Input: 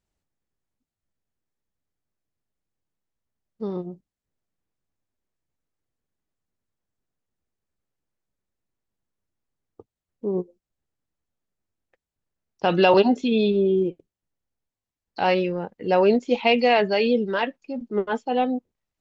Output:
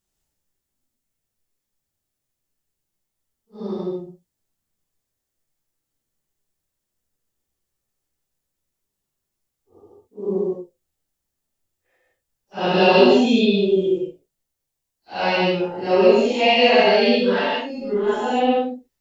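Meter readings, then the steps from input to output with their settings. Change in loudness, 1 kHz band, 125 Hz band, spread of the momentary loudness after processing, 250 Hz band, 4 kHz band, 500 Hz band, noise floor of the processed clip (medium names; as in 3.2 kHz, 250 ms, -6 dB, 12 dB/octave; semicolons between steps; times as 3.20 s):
+4.0 dB, +3.0 dB, +2.5 dB, 17 LU, +3.5 dB, +7.5 dB, +4.0 dB, -81 dBFS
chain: phase randomisation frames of 200 ms; treble shelf 4.1 kHz +11.5 dB; gated-style reverb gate 170 ms rising, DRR 0 dB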